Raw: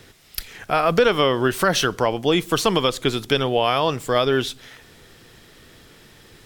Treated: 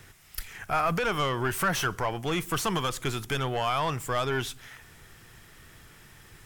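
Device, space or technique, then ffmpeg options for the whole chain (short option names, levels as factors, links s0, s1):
saturation between pre-emphasis and de-emphasis: -af "highshelf=f=2400:g=10,asoftclip=type=tanh:threshold=0.211,equalizer=f=250:t=o:w=1:g=-7,equalizer=f=500:t=o:w=1:g=-9,equalizer=f=4000:t=o:w=1:g=-9,highshelf=f=2400:g=-10"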